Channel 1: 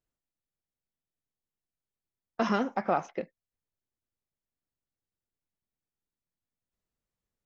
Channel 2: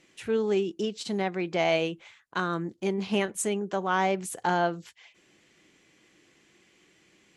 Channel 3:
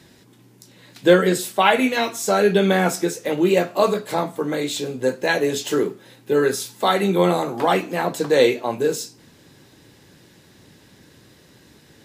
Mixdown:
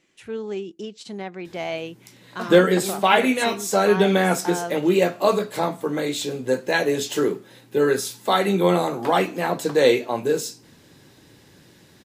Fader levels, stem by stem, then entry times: −5.0, −4.0, −1.0 decibels; 0.00, 0.00, 1.45 seconds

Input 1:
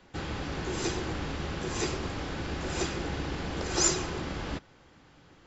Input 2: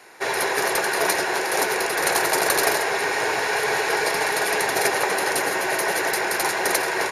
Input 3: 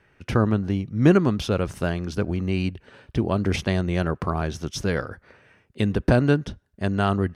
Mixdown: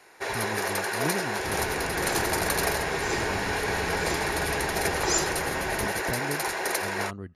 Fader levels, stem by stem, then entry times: −1.0, −6.5, −15.5 decibels; 1.30, 0.00, 0.00 seconds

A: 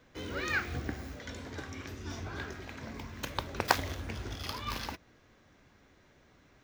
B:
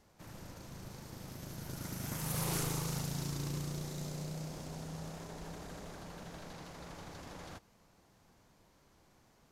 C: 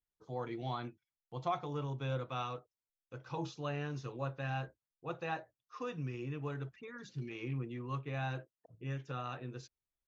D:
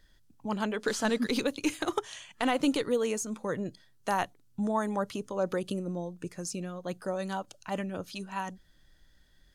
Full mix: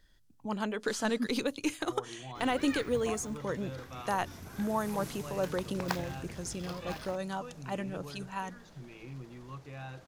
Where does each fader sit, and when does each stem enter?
−8.0, −10.0, −6.0, −2.5 decibels; 2.20, 2.50, 1.60, 0.00 seconds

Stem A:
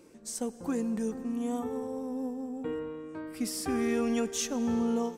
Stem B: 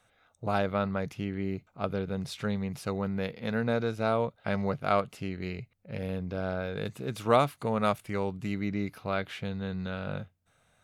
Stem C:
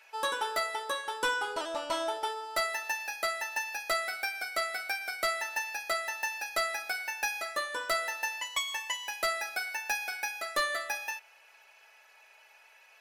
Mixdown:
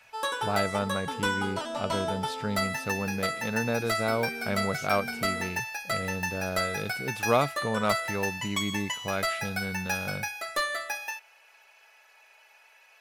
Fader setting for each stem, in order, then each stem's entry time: −13.0, −0.5, +1.0 decibels; 0.40, 0.00, 0.00 seconds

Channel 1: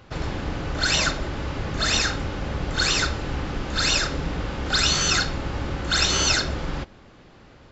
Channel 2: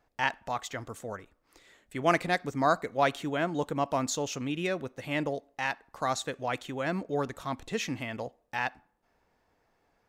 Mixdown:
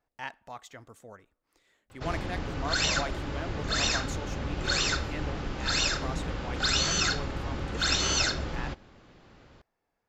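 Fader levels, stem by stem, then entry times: −5.5, −10.0 decibels; 1.90, 0.00 seconds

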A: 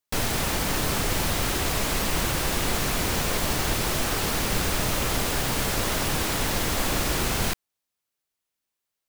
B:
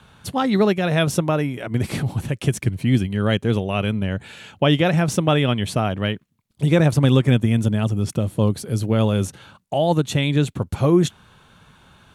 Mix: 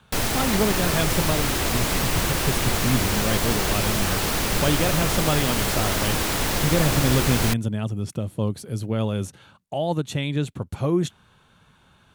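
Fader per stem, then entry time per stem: +2.0, −6.0 decibels; 0.00, 0.00 seconds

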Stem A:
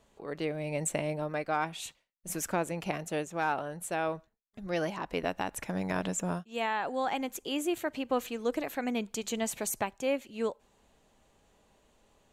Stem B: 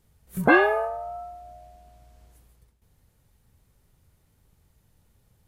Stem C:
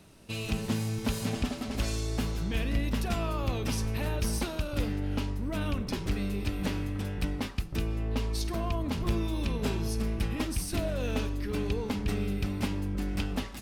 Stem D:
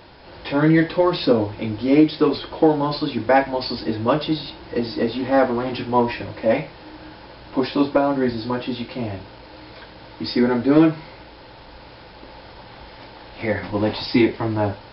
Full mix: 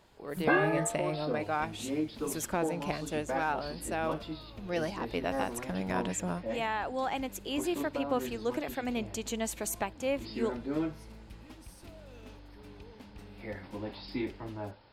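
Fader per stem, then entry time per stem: −1.5, −9.0, −19.5, −18.5 decibels; 0.00, 0.00, 1.10, 0.00 seconds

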